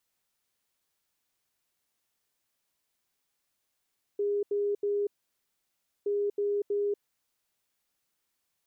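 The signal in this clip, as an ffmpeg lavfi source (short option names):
-f lavfi -i "aevalsrc='0.0531*sin(2*PI*408*t)*clip(min(mod(mod(t,1.87),0.32),0.24-mod(mod(t,1.87),0.32))/0.005,0,1)*lt(mod(t,1.87),0.96)':d=3.74:s=44100"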